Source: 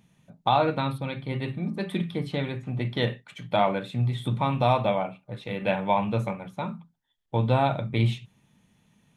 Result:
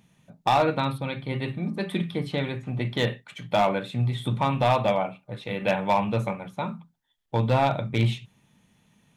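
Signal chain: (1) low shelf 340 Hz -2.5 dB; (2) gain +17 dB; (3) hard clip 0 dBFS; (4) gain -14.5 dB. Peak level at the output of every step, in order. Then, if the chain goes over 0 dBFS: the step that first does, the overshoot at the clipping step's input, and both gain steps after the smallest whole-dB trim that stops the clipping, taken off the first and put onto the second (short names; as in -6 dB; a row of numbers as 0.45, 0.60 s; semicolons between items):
-10.0, +7.0, 0.0, -14.5 dBFS; step 2, 7.0 dB; step 2 +10 dB, step 4 -7.5 dB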